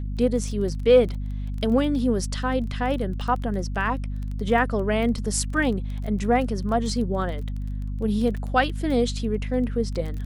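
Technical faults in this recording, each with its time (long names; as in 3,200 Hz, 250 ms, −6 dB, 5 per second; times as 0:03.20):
surface crackle 19 per second −31 dBFS
mains hum 50 Hz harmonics 5 −29 dBFS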